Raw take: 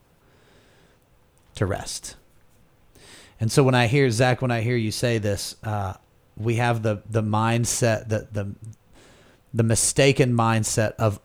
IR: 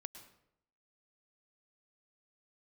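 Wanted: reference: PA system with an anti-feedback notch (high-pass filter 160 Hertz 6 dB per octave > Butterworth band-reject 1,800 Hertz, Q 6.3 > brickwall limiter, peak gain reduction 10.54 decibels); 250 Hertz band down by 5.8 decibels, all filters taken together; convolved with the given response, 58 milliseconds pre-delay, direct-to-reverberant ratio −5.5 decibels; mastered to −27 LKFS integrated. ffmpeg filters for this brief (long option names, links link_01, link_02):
-filter_complex "[0:a]equalizer=frequency=250:width_type=o:gain=-5.5,asplit=2[link_01][link_02];[1:a]atrim=start_sample=2205,adelay=58[link_03];[link_02][link_03]afir=irnorm=-1:irlink=0,volume=10dB[link_04];[link_01][link_04]amix=inputs=2:normalize=0,highpass=frequency=160:poles=1,asuperstop=centerf=1800:order=8:qfactor=6.3,volume=-5.5dB,alimiter=limit=-16dB:level=0:latency=1"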